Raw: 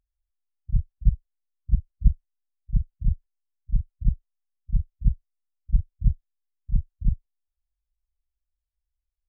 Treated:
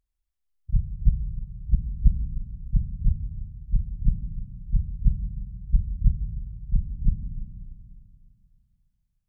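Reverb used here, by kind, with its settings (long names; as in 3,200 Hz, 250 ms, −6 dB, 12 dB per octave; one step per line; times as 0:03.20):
four-comb reverb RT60 2.5 s, combs from 33 ms, DRR 5 dB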